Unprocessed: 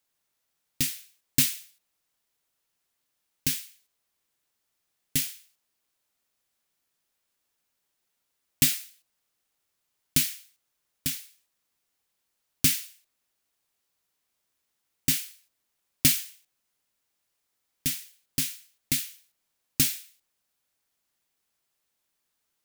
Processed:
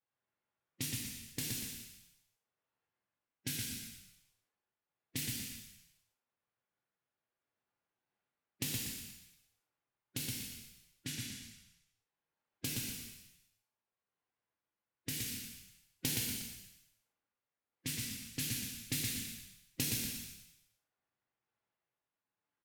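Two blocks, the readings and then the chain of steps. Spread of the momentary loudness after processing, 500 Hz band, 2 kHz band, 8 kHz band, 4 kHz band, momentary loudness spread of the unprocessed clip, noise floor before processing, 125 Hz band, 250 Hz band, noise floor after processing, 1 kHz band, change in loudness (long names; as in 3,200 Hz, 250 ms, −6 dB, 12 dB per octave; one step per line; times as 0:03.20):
16 LU, −3.0 dB, −8.0 dB, −10.0 dB, −9.0 dB, 16 LU, −79 dBFS, −6.5 dB, −7.5 dB, below −85 dBFS, −5.5 dB, −13.0 dB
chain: spectral magnitudes quantised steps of 15 dB
high-pass filter 83 Hz
low-pass that shuts in the quiet parts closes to 1,800 Hz, open at −24.5 dBFS
downward compressor, threshold −27 dBFS, peak gain reduction 10 dB
sample-and-hold tremolo
echo with shifted repeats 120 ms, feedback 42%, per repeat −31 Hz, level −3 dB
reverb whose tail is shaped and stops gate 370 ms falling, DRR −1.5 dB
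level −6.5 dB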